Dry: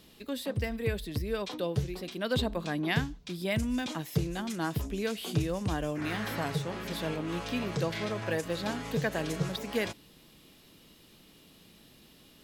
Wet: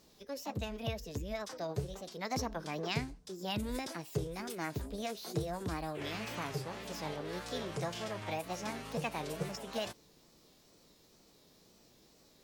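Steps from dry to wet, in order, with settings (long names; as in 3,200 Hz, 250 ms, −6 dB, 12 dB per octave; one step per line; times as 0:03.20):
formants moved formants +6 semitones
tape wow and flutter 100 cents
level −6.5 dB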